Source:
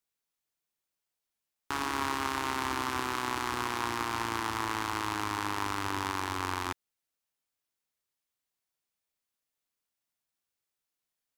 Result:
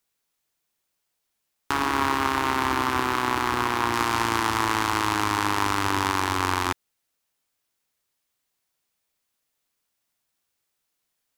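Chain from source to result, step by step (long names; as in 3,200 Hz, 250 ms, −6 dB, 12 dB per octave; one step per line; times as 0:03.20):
0:01.72–0:03.94: parametric band 7,700 Hz −5.5 dB 2.2 octaves
level +9 dB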